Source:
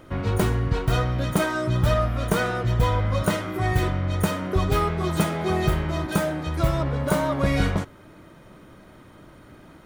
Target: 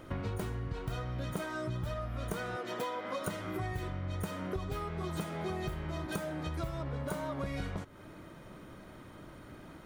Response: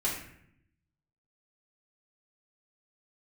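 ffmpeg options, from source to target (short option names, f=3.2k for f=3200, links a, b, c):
-filter_complex "[0:a]asettb=1/sr,asplit=3[a][b][c];[a]atrim=end=2.564[d];[b]atrim=start=2.56:end=3.27,asetpts=PTS-STARTPTS,afade=t=in:d=0.004:c=qsin,afade=t=out:st=0.706:d=0.004:c=qsin,highpass=f=260:w=0.5412,highpass=f=260:w=1.3066[e];[c]atrim=start=3.266[f];[d][e]acrossfade=d=0.004:c1=hsin:c2=qsin[g];[g][f]acrossfade=d=0.004:c1=qsin:c2=hsin,acompressor=threshold=-31dB:ratio=10,volume=-2.5dB"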